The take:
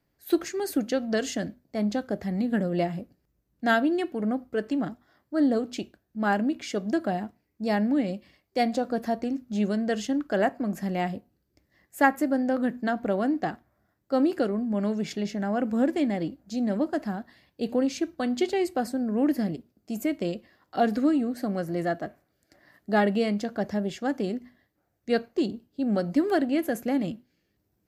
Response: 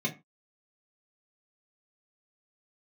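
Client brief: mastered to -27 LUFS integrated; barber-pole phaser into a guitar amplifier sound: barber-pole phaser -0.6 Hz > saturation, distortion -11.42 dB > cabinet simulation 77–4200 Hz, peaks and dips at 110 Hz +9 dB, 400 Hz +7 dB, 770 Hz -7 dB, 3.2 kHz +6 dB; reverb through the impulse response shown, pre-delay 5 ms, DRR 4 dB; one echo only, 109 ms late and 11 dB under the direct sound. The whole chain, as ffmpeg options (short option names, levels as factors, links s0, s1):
-filter_complex "[0:a]aecho=1:1:109:0.282,asplit=2[s0][s1];[1:a]atrim=start_sample=2205,adelay=5[s2];[s1][s2]afir=irnorm=-1:irlink=0,volume=0.299[s3];[s0][s3]amix=inputs=2:normalize=0,asplit=2[s4][s5];[s5]afreqshift=-0.6[s6];[s4][s6]amix=inputs=2:normalize=1,asoftclip=threshold=0.0944,highpass=77,equalizer=f=110:t=q:w=4:g=9,equalizer=f=400:t=q:w=4:g=7,equalizer=f=770:t=q:w=4:g=-7,equalizer=f=3200:t=q:w=4:g=6,lowpass=f=4200:w=0.5412,lowpass=f=4200:w=1.3066,volume=1.19"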